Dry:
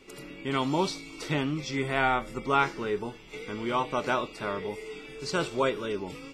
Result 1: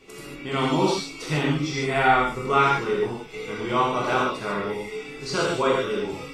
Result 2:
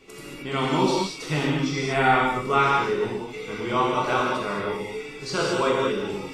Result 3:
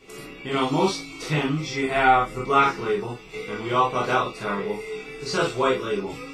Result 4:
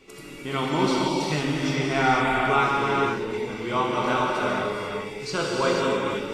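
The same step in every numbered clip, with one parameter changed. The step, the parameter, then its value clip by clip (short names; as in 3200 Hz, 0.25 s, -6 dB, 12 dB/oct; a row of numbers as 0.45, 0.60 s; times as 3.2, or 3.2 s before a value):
non-linear reverb, gate: 170, 250, 80, 530 ms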